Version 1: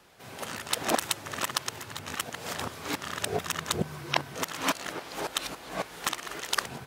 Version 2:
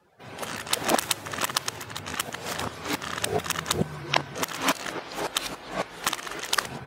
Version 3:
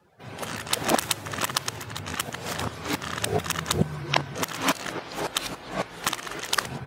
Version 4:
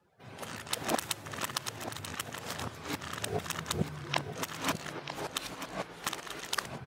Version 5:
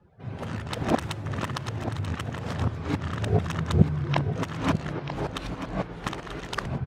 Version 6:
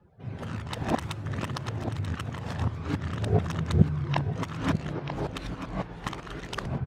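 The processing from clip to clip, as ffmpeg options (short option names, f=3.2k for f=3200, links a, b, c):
-af "afftdn=nr=17:nf=-54,volume=3.5dB"
-af "equalizer=f=110:w=0.72:g=5.5"
-af "aecho=1:1:936:0.316,volume=-8.5dB"
-af "aemphasis=mode=reproduction:type=riaa,volume=4.5dB"
-af "aphaser=in_gain=1:out_gain=1:delay=1.2:decay=0.24:speed=0.59:type=triangular,volume=-3dB"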